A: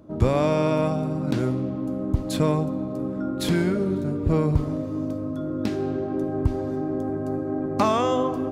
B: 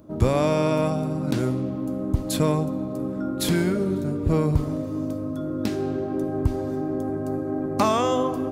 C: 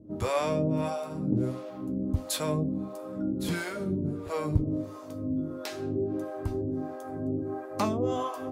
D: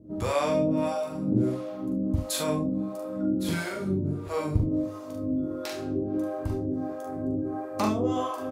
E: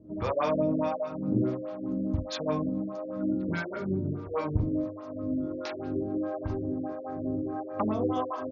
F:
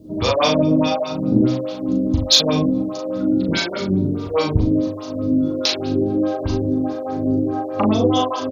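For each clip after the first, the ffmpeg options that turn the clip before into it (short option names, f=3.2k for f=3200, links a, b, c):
-af "highshelf=f=7.3k:g=10.5"
-filter_complex "[0:a]acrossover=split=520[a][b];[a]aeval=exprs='val(0)*(1-1/2+1/2*cos(2*PI*1.5*n/s))':c=same[c];[b]aeval=exprs='val(0)*(1-1/2-1/2*cos(2*PI*1.5*n/s))':c=same[d];[c][d]amix=inputs=2:normalize=0,flanger=delay=9.4:depth=2.5:regen=46:speed=0.64:shape=triangular,volume=3dB"
-af "aecho=1:1:42|71:0.668|0.316"
-filter_complex "[0:a]acrossover=split=1500[a][b];[a]crystalizer=i=10:c=0[c];[c][b]amix=inputs=2:normalize=0,afftfilt=real='re*lt(b*sr/1024,520*pow(7100/520,0.5+0.5*sin(2*PI*4.8*pts/sr)))':imag='im*lt(b*sr/1024,520*pow(7100/520,0.5+0.5*sin(2*PI*4.8*pts/sr)))':win_size=1024:overlap=0.75,volume=-3dB"
-filter_complex "[0:a]highshelf=f=2.5k:t=q:w=1.5:g=13,acontrast=83,asplit=2[a][b];[b]adelay=38,volume=-4dB[c];[a][c]amix=inputs=2:normalize=0,volume=3dB"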